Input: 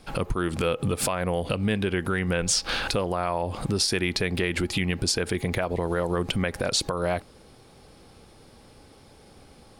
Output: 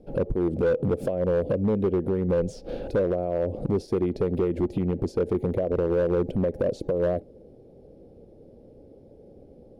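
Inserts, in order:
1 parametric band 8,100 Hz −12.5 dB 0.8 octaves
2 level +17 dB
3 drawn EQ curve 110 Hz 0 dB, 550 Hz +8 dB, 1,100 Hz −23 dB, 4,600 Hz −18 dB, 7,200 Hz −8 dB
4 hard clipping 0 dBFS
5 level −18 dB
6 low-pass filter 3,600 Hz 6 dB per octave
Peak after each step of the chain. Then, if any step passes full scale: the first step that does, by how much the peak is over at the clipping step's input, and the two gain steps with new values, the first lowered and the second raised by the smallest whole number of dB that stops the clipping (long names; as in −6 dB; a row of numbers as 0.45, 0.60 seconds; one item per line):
−12.0, +5.0, +6.5, 0.0, −18.0, −18.0 dBFS
step 2, 6.5 dB
step 2 +10 dB, step 5 −11 dB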